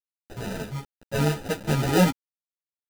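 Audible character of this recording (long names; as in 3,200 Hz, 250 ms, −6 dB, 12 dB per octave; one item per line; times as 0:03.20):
a quantiser's noise floor 6 bits, dither none
sample-and-hold tremolo
aliases and images of a low sample rate 1,100 Hz, jitter 0%
a shimmering, thickened sound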